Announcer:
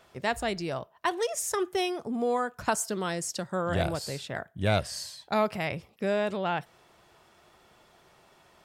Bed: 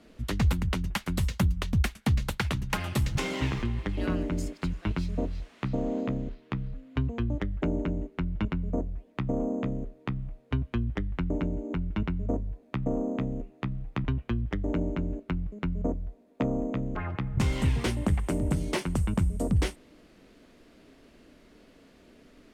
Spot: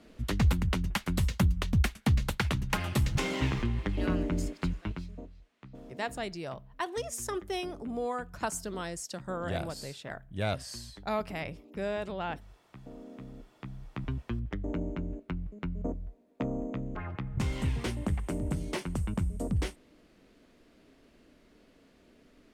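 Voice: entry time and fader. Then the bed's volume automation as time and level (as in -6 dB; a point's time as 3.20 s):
5.75 s, -6.0 dB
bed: 4.69 s -0.5 dB
5.35 s -19 dB
12.87 s -19 dB
14.17 s -5 dB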